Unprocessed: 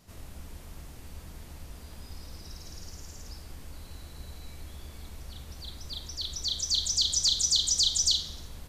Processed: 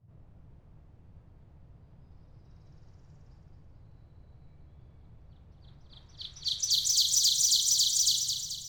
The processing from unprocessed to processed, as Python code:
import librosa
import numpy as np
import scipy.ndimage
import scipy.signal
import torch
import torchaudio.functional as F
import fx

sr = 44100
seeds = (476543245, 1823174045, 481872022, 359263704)

p1 = scipy.signal.medfilt(x, 3)
p2 = scipy.signal.lfilter([1.0, -0.9], [1.0], p1)
p3 = fx.env_lowpass(p2, sr, base_hz=570.0, full_db=-29.5)
p4 = fx.rider(p3, sr, range_db=10, speed_s=2.0)
p5 = fx.dmg_noise_band(p4, sr, seeds[0], low_hz=84.0, high_hz=160.0, level_db=-62.0)
p6 = p5 + fx.echo_wet_highpass(p5, sr, ms=217, feedback_pct=50, hz=1900.0, wet_db=-6.0, dry=0)
y = F.gain(torch.from_numpy(p6), 4.0).numpy()